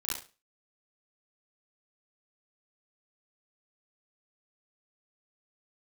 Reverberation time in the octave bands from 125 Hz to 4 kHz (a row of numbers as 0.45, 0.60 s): 0.35, 0.35, 0.35, 0.30, 0.30, 0.30 s